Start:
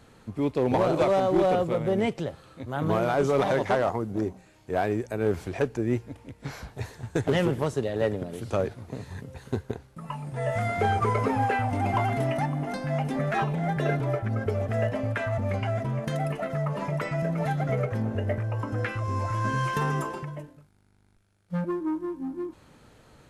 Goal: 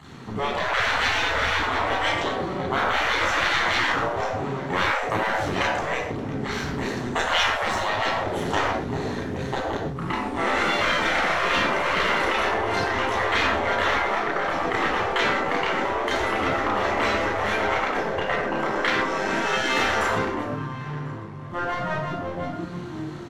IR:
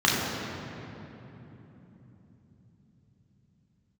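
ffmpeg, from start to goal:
-filter_complex "[0:a]asplit=2[link_01][link_02];[link_02]adelay=1044,lowpass=frequency=2600:poles=1,volume=-19.5dB,asplit=2[link_03][link_04];[link_04]adelay=1044,lowpass=frequency=2600:poles=1,volume=0.51,asplit=2[link_05][link_06];[link_06]adelay=1044,lowpass=frequency=2600:poles=1,volume=0.51,asplit=2[link_07][link_08];[link_08]adelay=1044,lowpass=frequency=2600:poles=1,volume=0.51[link_09];[link_01][link_03][link_05][link_07][link_09]amix=inputs=5:normalize=0,aeval=exprs='max(val(0),0)':channel_layout=same[link_10];[1:a]atrim=start_sample=2205,afade=type=out:start_time=0.21:duration=0.01,atrim=end_sample=9702[link_11];[link_10][link_11]afir=irnorm=-1:irlink=0,afftfilt=real='re*lt(hypot(re,im),0.447)':imag='im*lt(hypot(re,im),0.447)':win_size=1024:overlap=0.75"

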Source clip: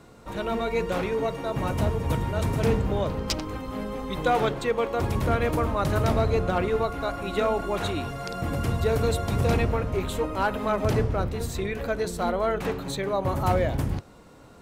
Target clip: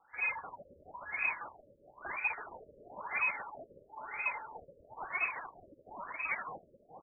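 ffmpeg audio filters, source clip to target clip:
ffmpeg -i in.wav -filter_complex "[0:a]highpass=frequency=400:width_type=q:width=4.8,asoftclip=type=hard:threshold=-20.5dB,atempo=1.2,asplit=2[link_01][link_02];[link_02]adelay=729,lowpass=frequency=2300:poles=1,volume=-4.5dB,asplit=2[link_03][link_04];[link_04]adelay=729,lowpass=frequency=2300:poles=1,volume=0.32,asplit=2[link_05][link_06];[link_06]adelay=729,lowpass=frequency=2300:poles=1,volume=0.32,asplit=2[link_07][link_08];[link_08]adelay=729,lowpass=frequency=2300:poles=1,volume=0.32[link_09];[link_03][link_05][link_07][link_09]amix=inputs=4:normalize=0[link_10];[link_01][link_10]amix=inputs=2:normalize=0,asetrate=76440,aresample=44100,lowpass=frequency=2800:width_type=q:width=0.5098,lowpass=frequency=2800:width_type=q:width=0.6013,lowpass=frequency=2800:width_type=q:width=0.9,lowpass=frequency=2800:width_type=q:width=2.563,afreqshift=-3300,afftfilt=real='re*lt(b*sr/1024,590*pow(2600/590,0.5+0.5*sin(2*PI*1*pts/sr)))':imag='im*lt(b*sr/1024,590*pow(2600/590,0.5+0.5*sin(2*PI*1*pts/sr)))':win_size=1024:overlap=0.75,volume=-7.5dB" out.wav

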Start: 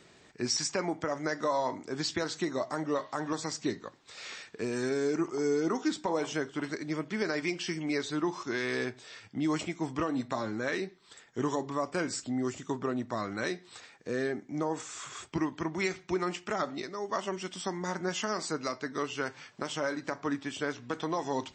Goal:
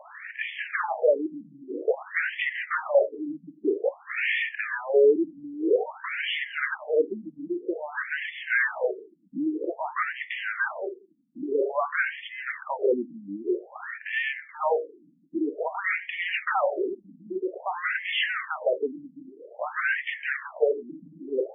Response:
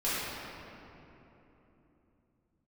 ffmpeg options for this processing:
-filter_complex "[0:a]asplit=2[link_01][link_02];[link_02]highpass=frequency=720:poles=1,volume=28dB,asoftclip=type=tanh:threshold=-15.5dB[link_03];[link_01][link_03]amix=inputs=2:normalize=0,lowpass=frequency=2800:poles=1,volume=-6dB,equalizer=frequency=125:width_type=o:width=1:gain=-8,equalizer=frequency=250:width_type=o:width=1:gain=-7,equalizer=frequency=500:width_type=o:width=1:gain=12,equalizer=frequency=1000:width_type=o:width=1:gain=-4,equalizer=frequency=2000:width_type=o:width=1:gain=6,afftfilt=real='re*between(b*sr/1024,210*pow(2500/210,0.5+0.5*sin(2*PI*0.51*pts/sr))/1.41,210*pow(2500/210,0.5+0.5*sin(2*PI*0.51*pts/sr))*1.41)':imag='im*between(b*sr/1024,210*pow(2500/210,0.5+0.5*sin(2*PI*0.51*pts/sr))/1.41,210*pow(2500/210,0.5+0.5*sin(2*PI*0.51*pts/sr))*1.41)':win_size=1024:overlap=0.75"

